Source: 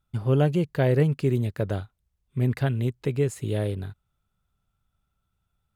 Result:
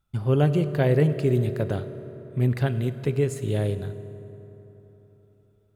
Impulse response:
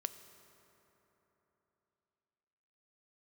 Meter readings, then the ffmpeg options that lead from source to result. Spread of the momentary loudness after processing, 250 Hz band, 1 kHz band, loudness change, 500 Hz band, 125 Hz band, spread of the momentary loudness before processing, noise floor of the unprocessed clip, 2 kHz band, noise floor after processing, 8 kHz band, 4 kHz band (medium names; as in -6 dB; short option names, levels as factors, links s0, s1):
18 LU, +1.0 dB, +1.0 dB, +1.0 dB, +1.5 dB, +1.0 dB, 10 LU, -78 dBFS, +0.5 dB, -63 dBFS, +0.5 dB, +0.5 dB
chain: -filter_complex "[1:a]atrim=start_sample=2205[s0];[0:a][s0]afir=irnorm=-1:irlink=0,volume=1.26"